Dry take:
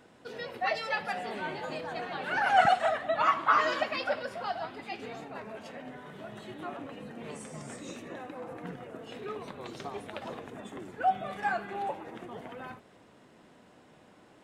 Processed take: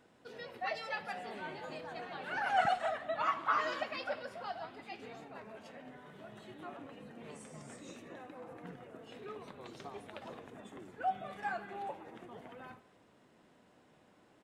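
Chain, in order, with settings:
far-end echo of a speakerphone 170 ms, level −20 dB
level −7.5 dB

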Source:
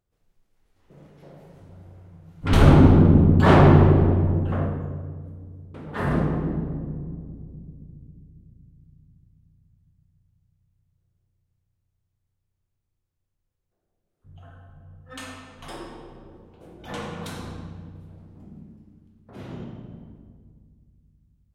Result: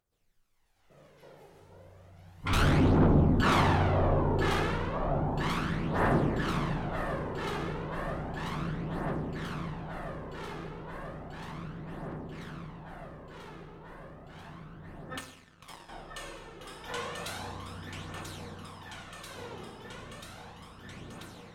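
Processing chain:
low-shelf EQ 500 Hz −12 dB
soft clipping −22.5 dBFS, distortion −10 dB
on a send: delay that swaps between a low-pass and a high-pass 494 ms, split 1,000 Hz, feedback 89%, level −4 dB
0:15.19–0:15.89: on the sum: power curve on the samples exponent 2
phase shifter 0.33 Hz, delay 2.5 ms, feedback 44%

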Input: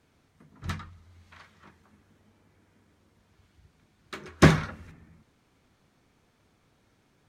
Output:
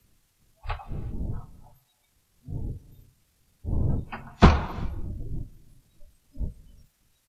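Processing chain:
wind on the microphone 190 Hz −35 dBFS
in parallel at −7.5 dB: bit-depth reduction 6 bits, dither triangular
on the sum: noise reduction from a noise print of the clip's start 26 dB
pitch shifter −7 semitones
frequency shifter −30 Hz
on a send at −17 dB: convolution reverb, pre-delay 3 ms
on the sum: level −1 dB

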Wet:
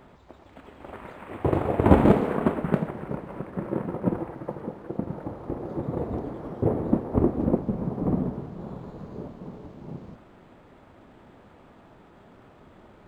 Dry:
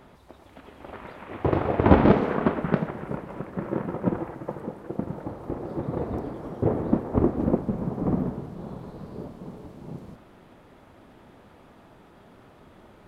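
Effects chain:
dynamic equaliser 1,500 Hz, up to −3 dB, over −42 dBFS, Q 1.1
linearly interpolated sample-rate reduction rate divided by 4×

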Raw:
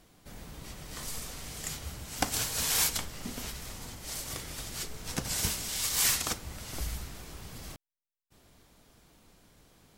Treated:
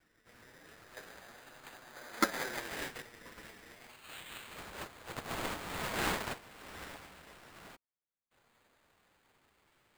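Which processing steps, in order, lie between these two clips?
lower of the sound and its delayed copy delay 8.3 ms
gain on a spectral selection 0:01.96–0:02.59, 720–2,100 Hz +8 dB
band-pass filter sweep 1,100 Hz → 4,600 Hz, 0:03.66–0:04.63
bad sample-rate conversion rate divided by 8×, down none, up hold
ring modulator whose carrier an LFO sweeps 610 Hz, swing 25%, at 0.29 Hz
level +5.5 dB

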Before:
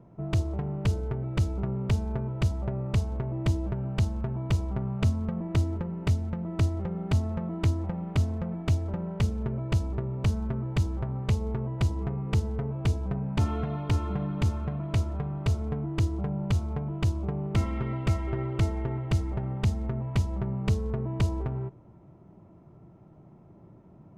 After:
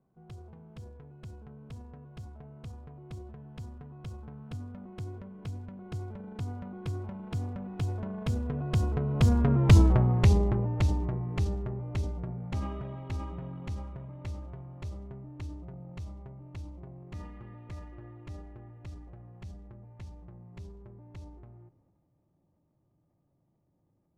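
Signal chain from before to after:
source passing by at 0:09.79, 35 m/s, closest 13 metres
transient designer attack −1 dB, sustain +6 dB
level +9 dB

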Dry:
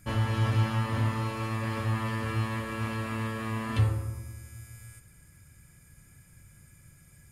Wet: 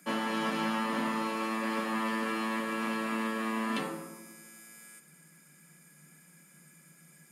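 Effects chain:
Chebyshev high-pass filter 150 Hz, order 10
level +2.5 dB

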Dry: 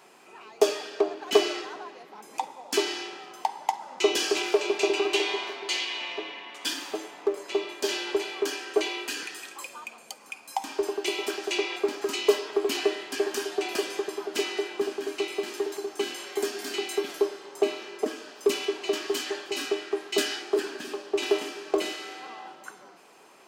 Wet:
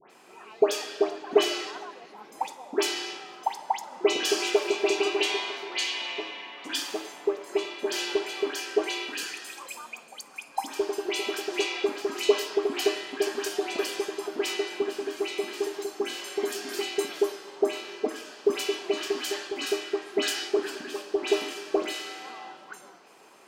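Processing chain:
all-pass dispersion highs, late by 104 ms, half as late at 1,900 Hz

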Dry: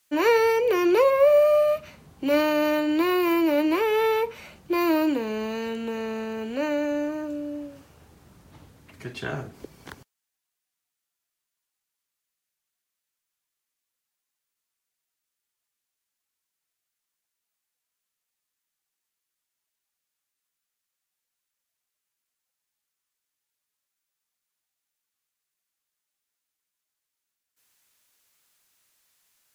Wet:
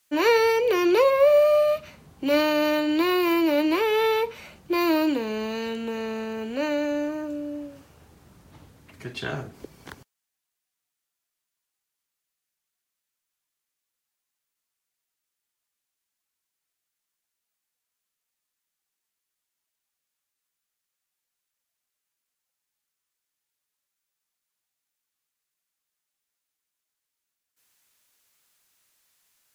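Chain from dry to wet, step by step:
dynamic equaliser 3,900 Hz, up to +6 dB, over −47 dBFS, Q 1.5

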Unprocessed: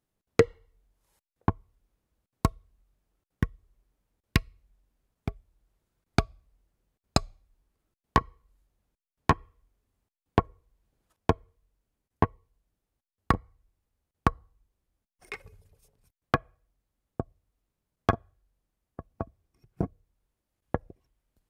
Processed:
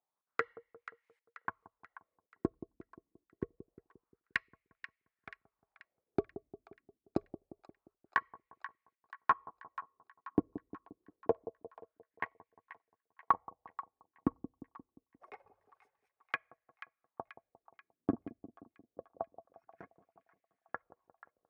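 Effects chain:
LFO wah 0.26 Hz 270–2,200 Hz, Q 4.2
on a send: echo with a time of its own for lows and highs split 860 Hz, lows 176 ms, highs 484 ms, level −14 dB
on the sum: level +3 dB

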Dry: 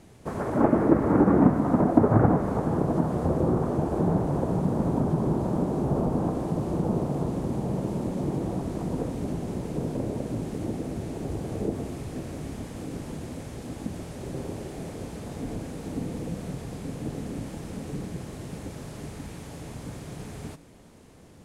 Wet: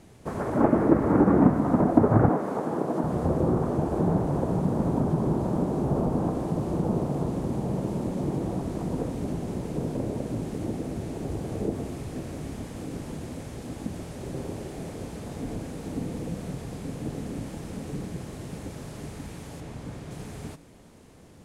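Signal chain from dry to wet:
0:02.29–0:03.04: high-pass filter 250 Hz 12 dB per octave
0:19.60–0:20.11: high-shelf EQ 5,500 Hz −8 dB

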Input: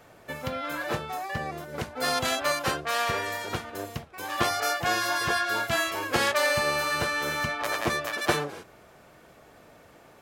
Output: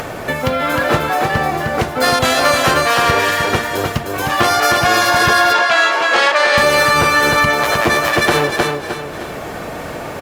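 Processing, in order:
high-shelf EQ 3,600 Hz −3.5 dB
four-comb reverb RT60 0.65 s, combs from 25 ms, DRR 15.5 dB
floating-point word with a short mantissa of 4 bits
on a send: repeating echo 308 ms, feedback 23%, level −5 dB
on the sum: upward compression, threshold −30 dBFS
0:05.52–0:06.58: band-pass filter 520–5,400 Hz
boost into a limiter +16.5 dB
level −1.5 dB
Opus 48 kbit/s 48,000 Hz

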